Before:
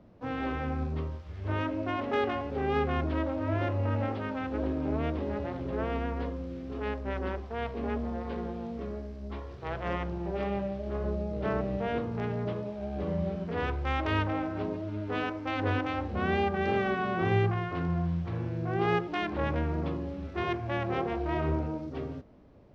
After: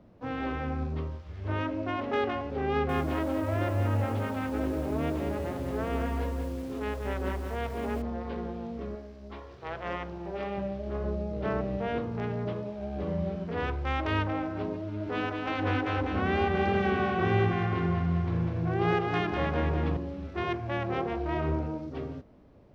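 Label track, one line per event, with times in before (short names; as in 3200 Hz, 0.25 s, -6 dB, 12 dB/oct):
2.700000	8.020000	lo-fi delay 0.19 s, feedback 35%, word length 8-bit, level -5.5 dB
8.950000	10.580000	low shelf 270 Hz -8 dB
14.800000	19.970000	split-band echo split 360 Hz, lows 0.26 s, highs 0.198 s, level -4.5 dB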